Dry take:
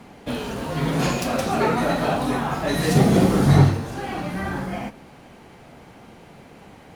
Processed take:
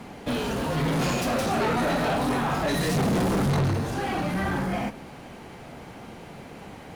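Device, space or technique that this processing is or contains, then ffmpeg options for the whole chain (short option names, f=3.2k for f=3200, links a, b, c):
saturation between pre-emphasis and de-emphasis: -af "highshelf=f=4.8k:g=11,asoftclip=type=tanh:threshold=-24.5dB,highshelf=f=4.8k:g=-11,volume=3.5dB"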